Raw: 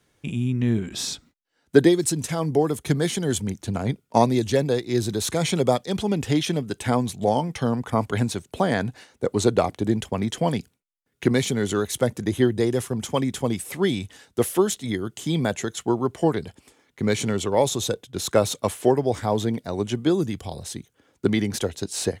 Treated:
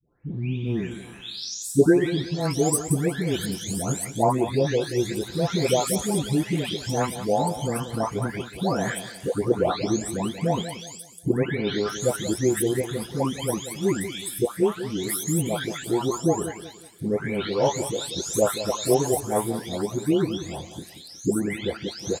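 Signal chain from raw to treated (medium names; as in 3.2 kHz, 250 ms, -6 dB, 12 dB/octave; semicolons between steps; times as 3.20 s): delay that grows with frequency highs late, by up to 667 ms; treble shelf 11 kHz +7 dB; feedback delay 182 ms, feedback 35%, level -12 dB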